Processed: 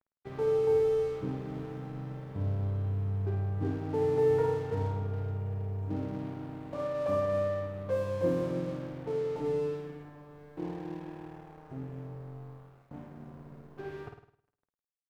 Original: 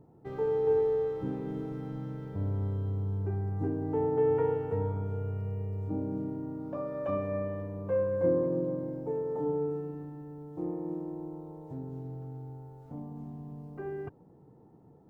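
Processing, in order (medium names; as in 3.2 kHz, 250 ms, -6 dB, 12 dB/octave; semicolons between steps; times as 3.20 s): crossover distortion -48 dBFS; flutter echo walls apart 9 m, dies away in 0.59 s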